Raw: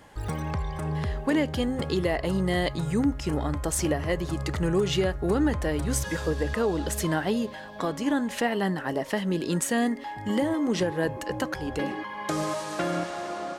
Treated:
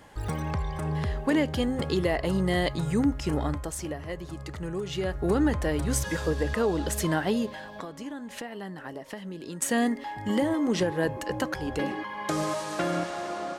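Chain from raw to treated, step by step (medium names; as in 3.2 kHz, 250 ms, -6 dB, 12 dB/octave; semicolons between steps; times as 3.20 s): 3.49–5.18 s: dip -8.5 dB, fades 0.34 s quadratic; 7.66–9.62 s: compression 6:1, threshold -36 dBFS, peak gain reduction 14 dB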